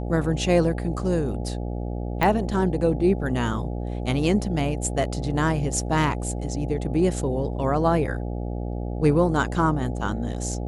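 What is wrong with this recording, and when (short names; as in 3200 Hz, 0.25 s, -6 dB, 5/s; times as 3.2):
buzz 60 Hz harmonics 14 -29 dBFS
2.23 pop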